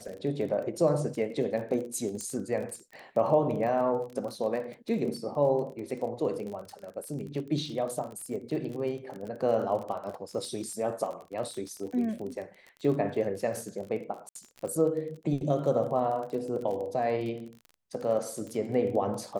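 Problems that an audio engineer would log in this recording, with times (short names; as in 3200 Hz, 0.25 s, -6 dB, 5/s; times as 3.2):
crackle 30/s -36 dBFS
2.21 pop -23 dBFS
14.29–14.35 gap 63 ms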